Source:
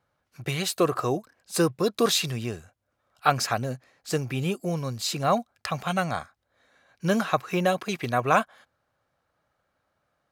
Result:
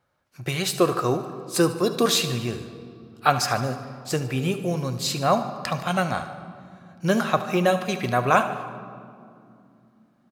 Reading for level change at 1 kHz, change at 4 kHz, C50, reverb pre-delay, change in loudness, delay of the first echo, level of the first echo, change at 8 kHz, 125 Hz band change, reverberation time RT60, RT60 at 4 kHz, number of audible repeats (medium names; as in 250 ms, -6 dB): +3.0 dB, +2.5 dB, 9.5 dB, 3 ms, +2.5 dB, 74 ms, -14.5 dB, +2.5 dB, +3.0 dB, 2.5 s, 1.4 s, 4